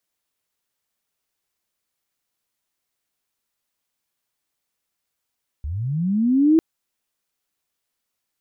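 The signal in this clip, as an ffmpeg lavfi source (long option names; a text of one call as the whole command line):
ffmpeg -f lavfi -i "aevalsrc='pow(10,(-25+14.5*t/0.95)/20)*sin(2*PI*(65*t+265*t*t/(2*0.95)))':duration=0.95:sample_rate=44100" out.wav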